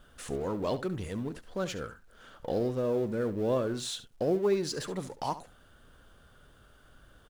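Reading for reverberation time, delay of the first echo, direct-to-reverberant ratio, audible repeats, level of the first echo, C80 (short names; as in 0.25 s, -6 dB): none, 70 ms, none, 1, -14.5 dB, none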